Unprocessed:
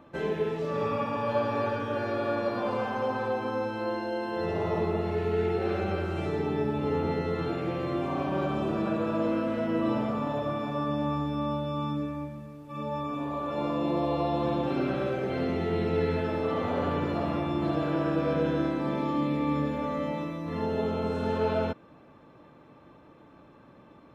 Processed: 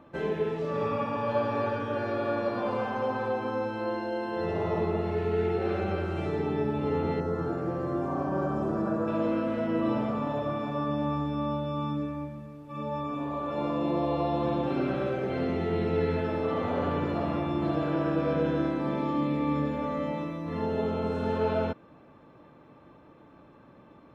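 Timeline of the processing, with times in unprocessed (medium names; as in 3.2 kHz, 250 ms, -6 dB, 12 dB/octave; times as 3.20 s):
7.20–9.08 s: high-order bell 2.9 kHz -13.5 dB 1.2 oct
whole clip: treble shelf 4.1 kHz -5.5 dB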